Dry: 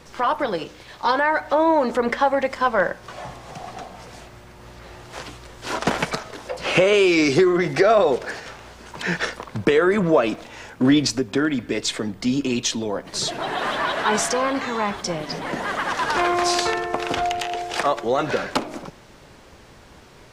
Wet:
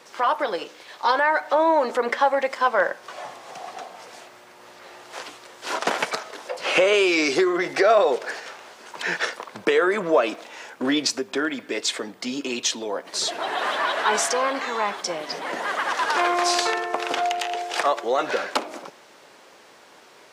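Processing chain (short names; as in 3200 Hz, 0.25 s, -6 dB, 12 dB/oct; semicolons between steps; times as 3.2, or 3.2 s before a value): HPF 410 Hz 12 dB/oct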